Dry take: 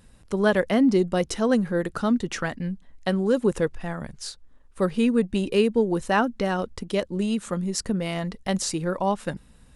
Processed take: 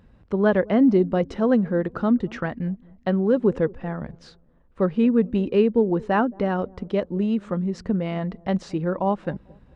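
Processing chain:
high-pass filter 46 Hz 6 dB per octave
head-to-tape spacing loss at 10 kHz 36 dB
delay with a low-pass on its return 221 ms, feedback 36%, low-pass 690 Hz, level −23 dB
level +3.5 dB

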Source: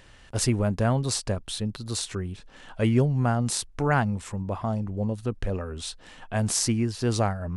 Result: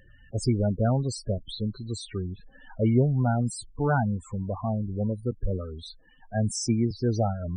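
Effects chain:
spectral peaks only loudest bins 16
0:05.31–0:06.91: multiband upward and downward expander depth 40%

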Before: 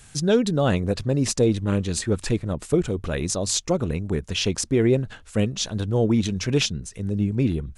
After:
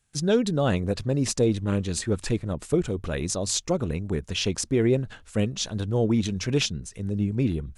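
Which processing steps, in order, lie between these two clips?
noise gate with hold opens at −38 dBFS
level −2.5 dB

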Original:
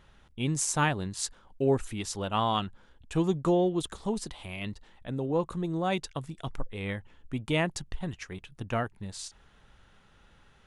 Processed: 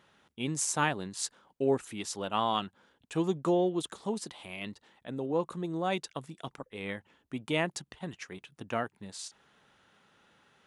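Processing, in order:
high-pass filter 190 Hz 12 dB per octave
level −1.5 dB

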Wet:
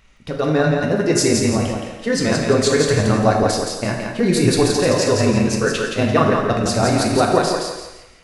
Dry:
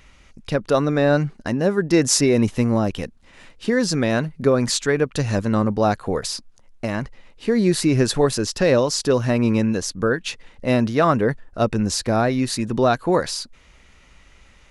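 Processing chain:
time stretch by overlap-add 0.56×, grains 54 ms
automatic gain control
feedback echo with a high-pass in the loop 170 ms, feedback 32%, high-pass 220 Hz, level −4 dB
convolution reverb, pre-delay 3 ms, DRR 1 dB
level −4 dB

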